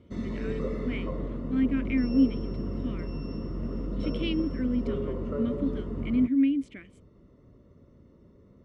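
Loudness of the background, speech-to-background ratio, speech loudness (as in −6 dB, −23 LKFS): −34.0 LKFS, 5.0 dB, −29.0 LKFS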